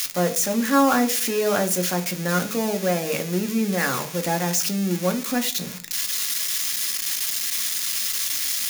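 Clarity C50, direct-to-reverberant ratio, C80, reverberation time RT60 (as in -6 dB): 15.5 dB, 5.0 dB, 20.5 dB, 0.45 s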